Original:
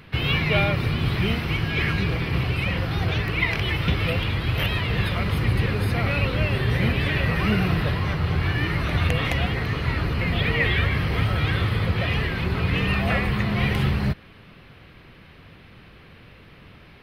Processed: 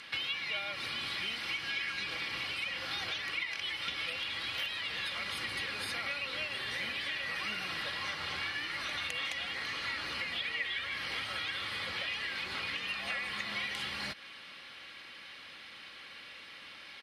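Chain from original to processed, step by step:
meter weighting curve ITU-R 468
downward compressor, threshold −32 dBFS, peak gain reduction 18 dB
notch filter 2,600 Hz, Q 20
comb filter 3.6 ms, depth 37%
level −3 dB

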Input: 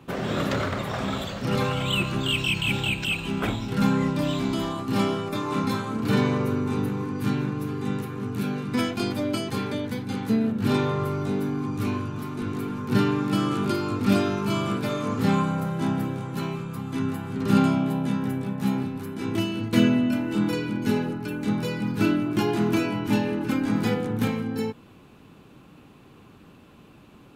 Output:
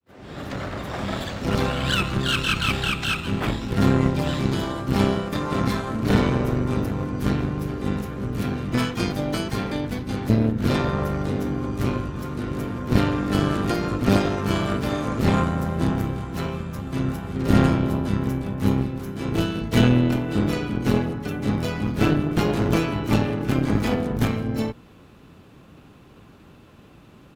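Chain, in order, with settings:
fade in at the beginning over 1.25 s
pitch-shifted copies added −12 semitones −3 dB, +5 semitones −9 dB
harmonic generator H 4 −14 dB, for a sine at −5.5 dBFS

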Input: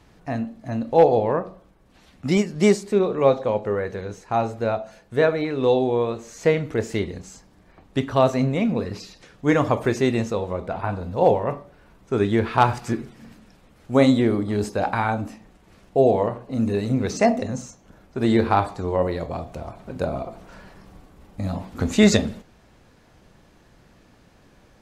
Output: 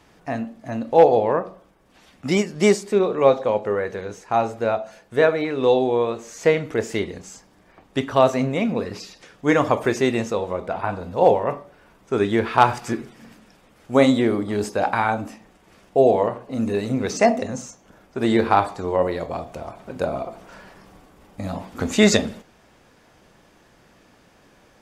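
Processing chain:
low-shelf EQ 180 Hz −10.5 dB
notch filter 4,100 Hz, Q 17
level +3 dB

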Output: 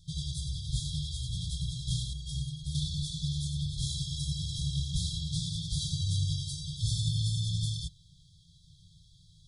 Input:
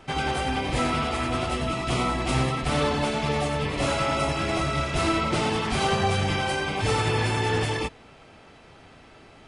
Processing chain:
brick-wall band-stop 180–3,200 Hz
0:02.13–0:02.75: stiff-string resonator 70 Hz, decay 0.21 s, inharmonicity 0.03
level −2 dB

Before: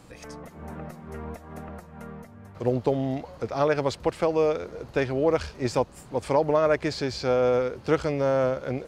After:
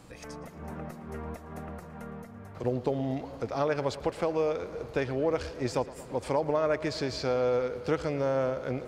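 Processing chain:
downward compressor 1.5 to 1, threshold −29 dBFS, peak gain reduction 5 dB
on a send: tape delay 114 ms, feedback 86%, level −16 dB, low-pass 5,700 Hz
0:01.82–0:02.64: on the sum: multiband upward and downward compressor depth 40%
level −1.5 dB

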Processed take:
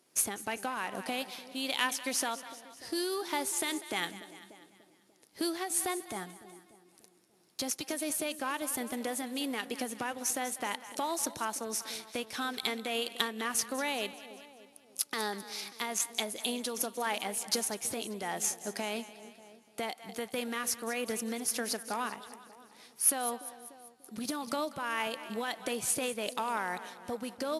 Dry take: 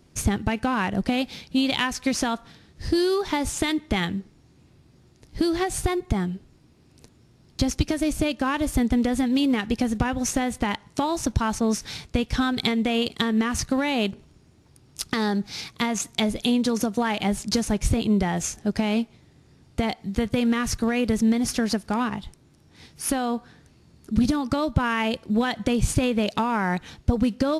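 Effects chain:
high-pass filter 430 Hz 12 dB per octave
parametric band 11,000 Hz +14 dB 0.62 octaves
on a send: echo with a time of its own for lows and highs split 640 Hz, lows 294 ms, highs 196 ms, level −14 dB
on the sum: amplitude modulation by smooth noise, depth 60%
level −4.5 dB

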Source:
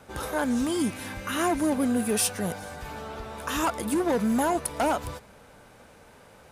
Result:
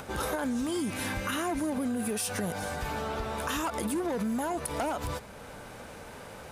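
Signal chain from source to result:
upward compression, threshold −44 dBFS
brickwall limiter −24 dBFS, peak gain reduction 9.5 dB
downward compressor, threshold −33 dBFS, peak gain reduction 6 dB
level +5 dB

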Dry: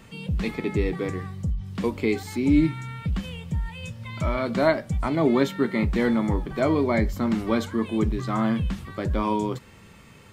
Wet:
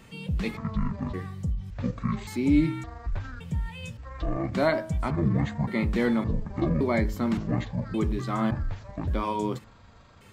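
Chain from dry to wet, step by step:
pitch shifter gated in a rhythm −11.5 semitones, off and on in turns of 567 ms
hum removal 106.7 Hz, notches 17
level −2 dB

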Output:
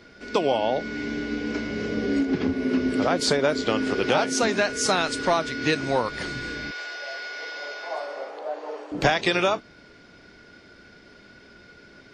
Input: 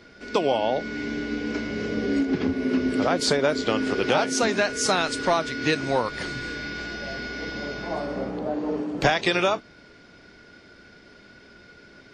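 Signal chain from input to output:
0:06.71–0:08.92: high-pass filter 520 Hz 24 dB per octave

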